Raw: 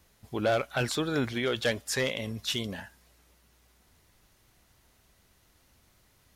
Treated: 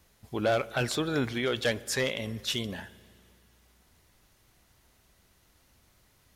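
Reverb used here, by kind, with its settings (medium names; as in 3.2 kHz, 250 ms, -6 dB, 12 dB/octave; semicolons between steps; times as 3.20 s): spring tank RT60 2.3 s, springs 33/44 ms, chirp 35 ms, DRR 19 dB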